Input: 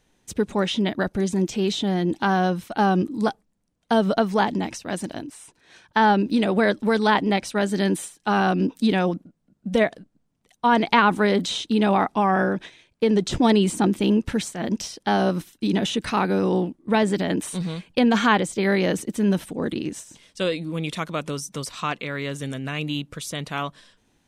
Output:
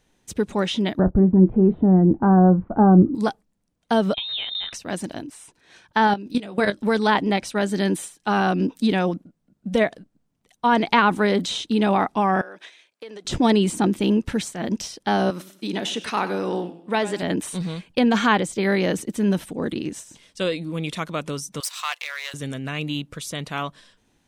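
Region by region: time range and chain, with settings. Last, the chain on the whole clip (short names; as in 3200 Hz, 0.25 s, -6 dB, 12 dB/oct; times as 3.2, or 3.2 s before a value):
0.99–3.15 LPF 1300 Hz 24 dB/oct + tilt -3.5 dB/oct + doubler 27 ms -14 dB
4.14–4.73 compressor 12:1, threshold -24 dBFS + inverted band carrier 3900 Hz
6.07–6.81 high shelf 3100 Hz +5 dB + level quantiser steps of 18 dB + doubler 20 ms -11 dB
12.41–13.25 HPF 580 Hz + bell 890 Hz -3 dB 0.39 oct + compressor 4:1, threshold -36 dBFS
15.3–17.23 HPF 420 Hz 6 dB/oct + warbling echo 97 ms, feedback 37%, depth 103 cents, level -14 dB
21.6–22.34 half-wave gain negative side -7 dB + HPF 690 Hz 24 dB/oct + tilt +3 dB/oct
whole clip: dry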